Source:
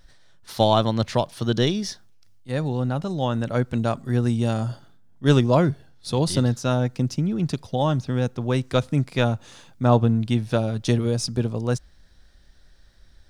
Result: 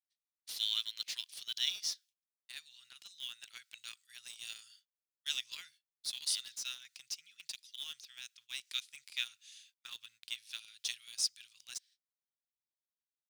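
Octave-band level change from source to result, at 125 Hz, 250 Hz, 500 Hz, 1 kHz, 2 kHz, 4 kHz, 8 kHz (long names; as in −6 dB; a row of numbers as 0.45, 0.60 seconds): below −40 dB, below −40 dB, below −40 dB, −36.5 dB, −12.5 dB, −4.0 dB, −3.5 dB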